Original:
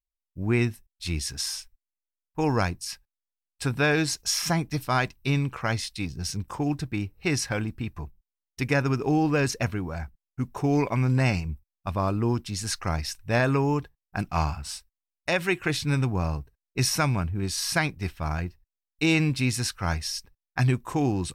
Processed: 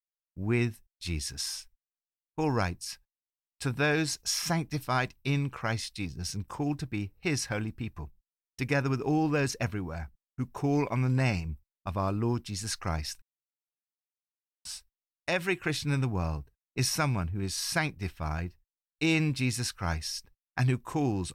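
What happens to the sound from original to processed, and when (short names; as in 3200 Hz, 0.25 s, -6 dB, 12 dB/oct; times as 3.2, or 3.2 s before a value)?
13.22–14.65 mute
whole clip: gate with hold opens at -45 dBFS; gain -4 dB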